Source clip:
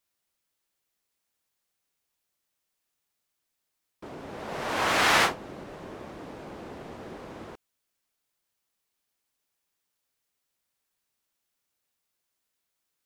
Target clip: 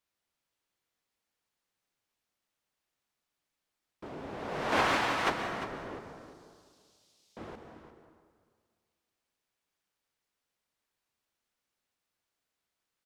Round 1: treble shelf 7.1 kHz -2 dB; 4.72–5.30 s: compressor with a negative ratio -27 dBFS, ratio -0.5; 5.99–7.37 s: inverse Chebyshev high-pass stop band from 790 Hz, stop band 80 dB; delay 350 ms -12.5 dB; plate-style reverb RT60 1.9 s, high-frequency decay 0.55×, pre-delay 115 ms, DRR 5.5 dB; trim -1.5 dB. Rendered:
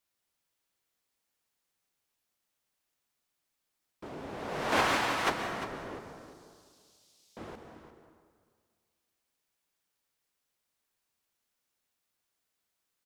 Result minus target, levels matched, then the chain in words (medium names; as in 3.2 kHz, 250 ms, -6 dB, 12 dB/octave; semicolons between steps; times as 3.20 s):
8 kHz band +3.5 dB
treble shelf 7.1 kHz -10.5 dB; 4.72–5.30 s: compressor with a negative ratio -27 dBFS, ratio -0.5; 5.99–7.37 s: inverse Chebyshev high-pass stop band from 790 Hz, stop band 80 dB; delay 350 ms -12.5 dB; plate-style reverb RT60 1.9 s, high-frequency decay 0.55×, pre-delay 115 ms, DRR 5.5 dB; trim -1.5 dB